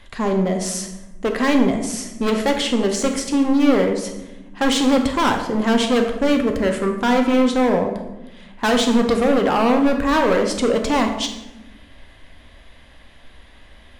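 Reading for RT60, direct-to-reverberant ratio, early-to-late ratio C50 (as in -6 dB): 1.0 s, 3.5 dB, 6.5 dB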